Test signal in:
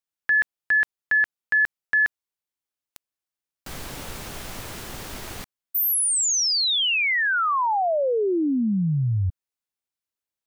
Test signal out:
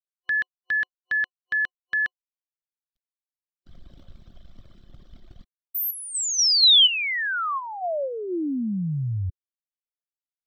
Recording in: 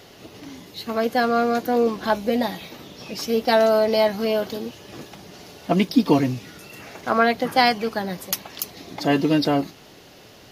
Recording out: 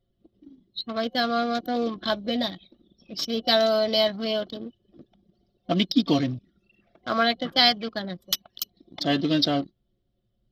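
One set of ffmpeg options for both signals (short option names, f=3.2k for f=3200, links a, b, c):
-af "anlmdn=39.8,superequalizer=7b=0.562:9b=0.398:13b=3.98:14b=2.24:16b=0.316,volume=-4dB"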